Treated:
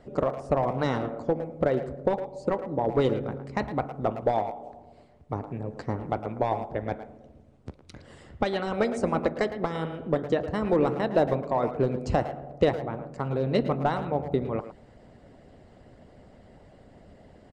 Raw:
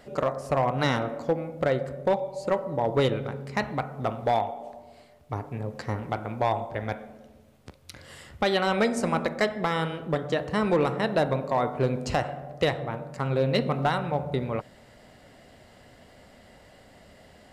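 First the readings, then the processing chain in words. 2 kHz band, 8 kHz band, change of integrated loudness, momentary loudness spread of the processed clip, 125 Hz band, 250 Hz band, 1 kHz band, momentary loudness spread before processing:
-5.5 dB, no reading, -0.5 dB, 10 LU, -1.5 dB, +0.5 dB, -2.0 dB, 11 LU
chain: steep low-pass 9.5 kHz 48 dB/octave; tilt shelf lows +7.5 dB; harmonic-percussive split harmonic -10 dB; speakerphone echo 110 ms, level -11 dB

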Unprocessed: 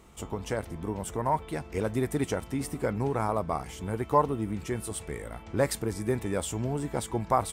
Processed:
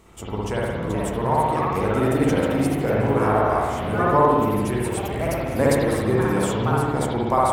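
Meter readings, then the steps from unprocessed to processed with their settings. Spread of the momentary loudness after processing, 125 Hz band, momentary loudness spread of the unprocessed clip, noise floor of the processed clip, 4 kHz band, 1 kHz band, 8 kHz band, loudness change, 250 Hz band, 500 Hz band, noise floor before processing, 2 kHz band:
7 LU, +9.0 dB, 8 LU, -28 dBFS, +7.0 dB, +9.5 dB, +3.0 dB, +9.5 dB, +10.0 dB, +9.5 dB, -46 dBFS, +11.0 dB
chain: ever faster or slower copies 507 ms, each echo +3 st, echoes 3, each echo -6 dB; spring tank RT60 1.4 s, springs 57 ms, chirp 35 ms, DRR -5 dB; trim +2 dB

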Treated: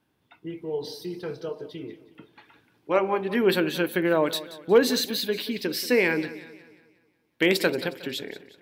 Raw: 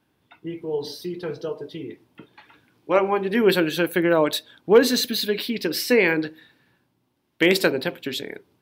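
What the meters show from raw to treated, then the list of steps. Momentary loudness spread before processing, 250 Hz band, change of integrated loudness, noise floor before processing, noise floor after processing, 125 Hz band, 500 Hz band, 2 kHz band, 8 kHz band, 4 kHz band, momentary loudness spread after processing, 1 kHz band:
16 LU, -3.5 dB, -3.5 dB, -70 dBFS, -71 dBFS, -3.5 dB, -3.5 dB, -3.5 dB, -3.5 dB, -3.5 dB, 16 LU, -3.5 dB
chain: modulated delay 181 ms, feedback 45%, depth 50 cents, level -16 dB; trim -3.5 dB

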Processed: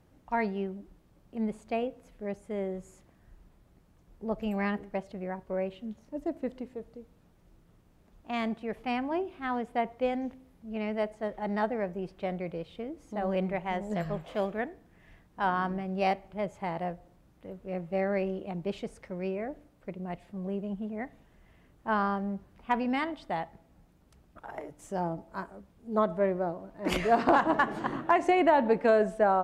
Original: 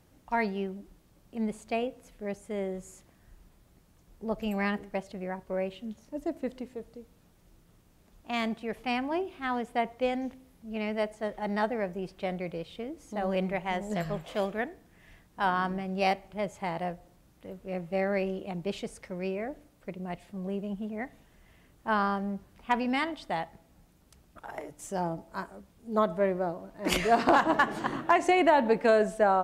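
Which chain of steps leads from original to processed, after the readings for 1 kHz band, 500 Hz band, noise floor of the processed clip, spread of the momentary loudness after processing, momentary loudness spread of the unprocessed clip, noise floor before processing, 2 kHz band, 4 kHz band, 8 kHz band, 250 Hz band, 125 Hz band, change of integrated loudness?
-1.0 dB, -0.5 dB, -63 dBFS, 17 LU, 17 LU, -62 dBFS, -2.5 dB, -5.0 dB, no reading, 0.0 dB, 0.0 dB, -0.5 dB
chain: treble shelf 3 kHz -9.5 dB

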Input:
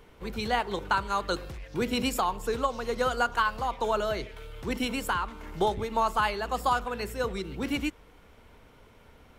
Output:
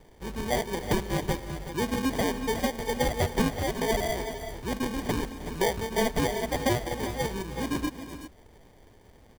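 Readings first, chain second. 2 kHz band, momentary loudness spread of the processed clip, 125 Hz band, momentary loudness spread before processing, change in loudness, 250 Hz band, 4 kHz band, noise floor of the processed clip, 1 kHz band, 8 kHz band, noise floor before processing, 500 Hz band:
-2.0 dB, 9 LU, +7.0 dB, 8 LU, 0.0 dB, +4.0 dB, 0.0 dB, -56 dBFS, -5.0 dB, +5.5 dB, -56 dBFS, +1.5 dB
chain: sample-and-hold 33×; multi-tap echo 311/369/381 ms -17/-13/-12 dB

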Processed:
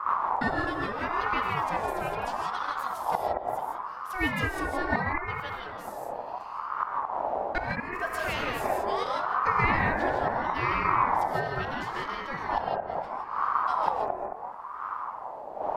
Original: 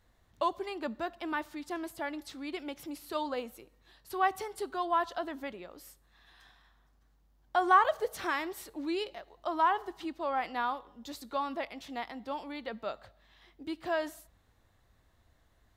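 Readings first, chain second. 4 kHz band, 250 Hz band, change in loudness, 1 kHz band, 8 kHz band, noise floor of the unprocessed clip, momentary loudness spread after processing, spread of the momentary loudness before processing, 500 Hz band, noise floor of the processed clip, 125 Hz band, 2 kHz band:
+3.0 dB, +2.0 dB, +4.5 dB, +6.0 dB, +1.5 dB, -68 dBFS, 11 LU, 13 LU, +4.0 dB, -39 dBFS, no reading, +7.5 dB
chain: wind noise 150 Hz -30 dBFS; inverted gate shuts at -15 dBFS, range -32 dB; on a send: bucket-brigade echo 220 ms, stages 2048, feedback 46%, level -4 dB; on the sum: gated-style reverb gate 190 ms rising, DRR 0.5 dB; ring modulator with a swept carrier 920 Hz, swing 25%, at 0.74 Hz; trim +2 dB

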